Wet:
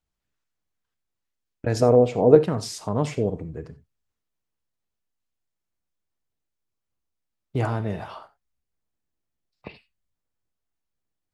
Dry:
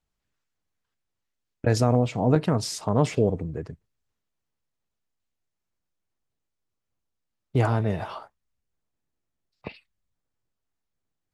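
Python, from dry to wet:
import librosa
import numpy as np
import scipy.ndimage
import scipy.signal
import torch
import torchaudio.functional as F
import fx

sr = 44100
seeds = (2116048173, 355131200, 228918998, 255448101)

y = fx.peak_eq(x, sr, hz=450.0, db=15.0, octaves=0.84, at=(1.82, 2.39))
y = fx.rev_gated(y, sr, seeds[0], gate_ms=110, shape='flat', drr_db=12.0)
y = y * 10.0 ** (-2.5 / 20.0)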